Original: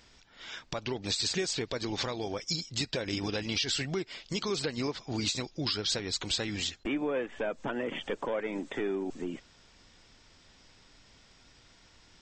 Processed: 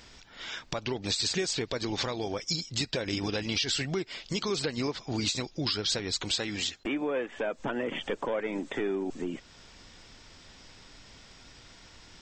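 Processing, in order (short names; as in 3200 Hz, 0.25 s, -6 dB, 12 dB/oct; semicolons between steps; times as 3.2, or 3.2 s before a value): 6.29–7.6 low shelf 140 Hz -8 dB; in parallel at +1.5 dB: compressor, threshold -46 dBFS, peak gain reduction 18 dB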